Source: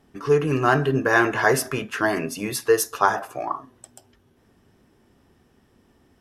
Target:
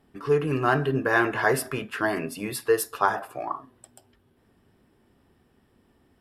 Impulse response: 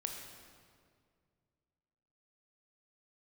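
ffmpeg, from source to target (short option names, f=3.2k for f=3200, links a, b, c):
-af "equalizer=f=6.2k:t=o:w=0.27:g=-12.5,volume=-3.5dB"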